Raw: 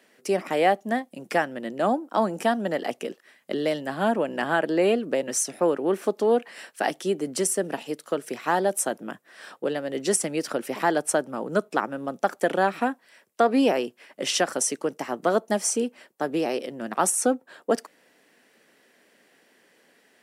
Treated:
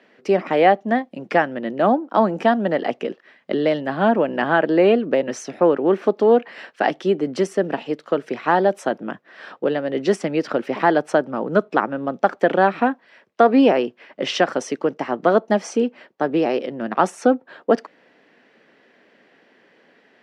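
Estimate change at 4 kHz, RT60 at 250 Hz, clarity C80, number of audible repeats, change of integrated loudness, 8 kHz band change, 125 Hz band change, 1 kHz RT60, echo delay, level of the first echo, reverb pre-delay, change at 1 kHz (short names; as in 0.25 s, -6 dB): +1.0 dB, none, none, none, +5.5 dB, -12.5 dB, +7.0 dB, none, none, none, none, +6.0 dB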